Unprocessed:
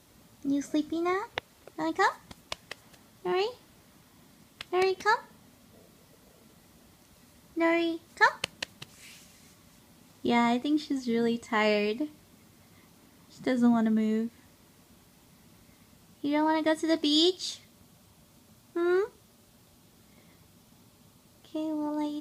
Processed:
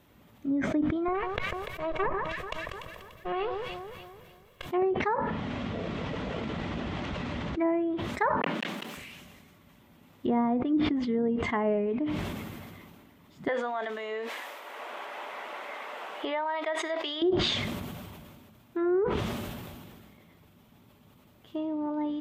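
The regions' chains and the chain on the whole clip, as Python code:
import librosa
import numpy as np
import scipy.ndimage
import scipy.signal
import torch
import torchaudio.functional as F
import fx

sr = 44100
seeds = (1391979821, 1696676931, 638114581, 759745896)

y = fx.chain(x, sr, fx.lower_of_two(delay_ms=1.8),
    fx.echo_alternate(ms=146, hz=1500.0, feedback_pct=71, wet_db=-13), at=(1.08, 4.67))
y = fx.chain(y, sr, fx.lowpass(hz=7600.0, slope=24),
    fx.env_flatten(amount_pct=100), at=(5.18, 7.58))
y = fx.chain(y, sr, fx.block_float(bits=3),
    fx.highpass(hz=200.0, slope=24), at=(8.37, 8.97))
y = fx.chain(y, sr, fx.highpass(hz=540.0, slope=24),
    fx.band_squash(depth_pct=100), at=(13.48, 17.22))
y = fx.env_lowpass_down(y, sr, base_hz=820.0, full_db=-23.0)
y = fx.band_shelf(y, sr, hz=6900.0, db=-12.0, octaves=1.7)
y = fx.sustainer(y, sr, db_per_s=27.0)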